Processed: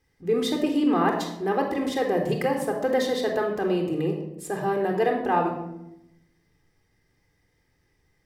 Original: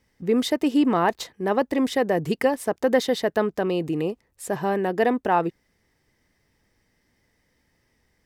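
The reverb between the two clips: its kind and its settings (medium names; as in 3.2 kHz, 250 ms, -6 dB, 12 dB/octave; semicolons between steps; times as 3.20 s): simulated room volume 2700 m³, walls furnished, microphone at 3.8 m; trim -5.5 dB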